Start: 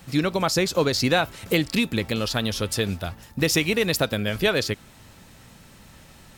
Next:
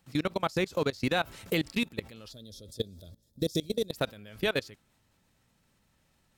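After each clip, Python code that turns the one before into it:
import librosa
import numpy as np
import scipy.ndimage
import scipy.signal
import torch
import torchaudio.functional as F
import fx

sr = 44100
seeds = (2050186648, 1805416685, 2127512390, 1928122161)

y = fx.spec_box(x, sr, start_s=2.32, length_s=1.6, low_hz=660.0, high_hz=3200.0, gain_db=-19)
y = fx.level_steps(y, sr, step_db=22)
y = F.gain(torch.from_numpy(y), -4.0).numpy()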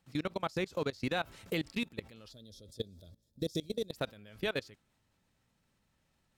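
y = fx.high_shelf(x, sr, hz=9600.0, db=-6.0)
y = F.gain(torch.from_numpy(y), -5.5).numpy()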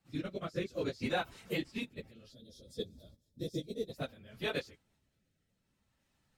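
y = fx.phase_scramble(x, sr, seeds[0], window_ms=50)
y = fx.rotary(y, sr, hz=0.6)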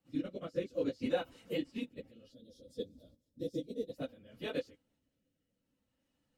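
y = fx.small_body(x, sr, hz=(280.0, 500.0, 2900.0), ring_ms=45, db=13)
y = F.gain(torch.from_numpy(y), -7.5).numpy()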